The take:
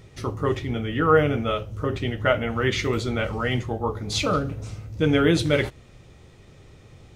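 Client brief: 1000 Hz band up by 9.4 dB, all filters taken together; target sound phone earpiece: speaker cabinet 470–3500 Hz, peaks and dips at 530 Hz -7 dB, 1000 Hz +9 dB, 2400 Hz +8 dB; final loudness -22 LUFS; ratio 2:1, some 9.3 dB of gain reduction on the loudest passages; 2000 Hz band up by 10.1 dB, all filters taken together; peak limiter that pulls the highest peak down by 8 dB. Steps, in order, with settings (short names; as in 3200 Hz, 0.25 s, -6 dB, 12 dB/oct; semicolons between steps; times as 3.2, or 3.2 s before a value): bell 1000 Hz +5.5 dB; bell 2000 Hz +7 dB; compressor 2:1, threshold -26 dBFS; limiter -17 dBFS; speaker cabinet 470–3500 Hz, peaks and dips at 530 Hz -7 dB, 1000 Hz +9 dB, 2400 Hz +8 dB; gain +6 dB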